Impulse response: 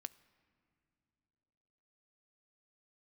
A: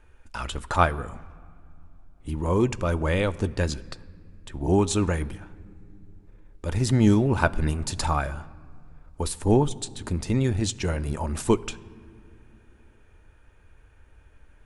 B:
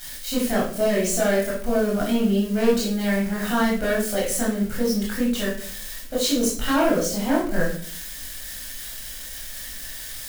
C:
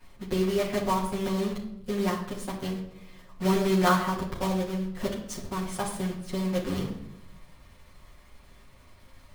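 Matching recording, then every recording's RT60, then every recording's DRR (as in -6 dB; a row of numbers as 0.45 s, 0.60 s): A; no single decay rate, 0.50 s, 0.80 s; 12.5 dB, -5.5 dB, -10.0 dB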